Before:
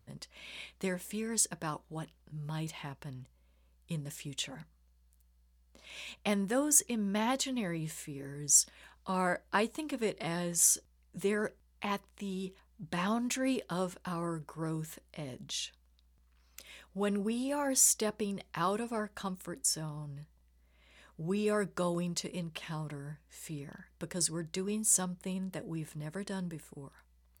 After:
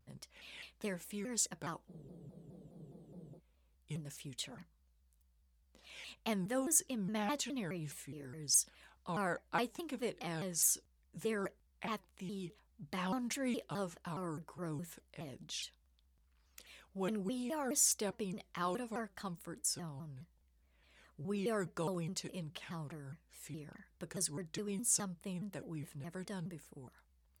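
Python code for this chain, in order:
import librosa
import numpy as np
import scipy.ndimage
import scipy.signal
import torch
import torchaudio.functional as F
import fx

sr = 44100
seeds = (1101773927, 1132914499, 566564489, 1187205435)

y = fx.spec_freeze(x, sr, seeds[0], at_s=1.9, hold_s=1.48)
y = fx.vibrato_shape(y, sr, shape='saw_down', rate_hz=4.8, depth_cents=250.0)
y = y * librosa.db_to_amplitude(-5.5)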